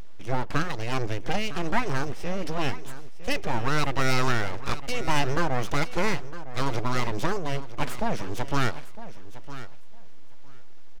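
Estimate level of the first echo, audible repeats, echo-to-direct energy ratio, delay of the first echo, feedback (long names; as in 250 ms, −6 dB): −14.5 dB, 2, −14.5 dB, 958 ms, 16%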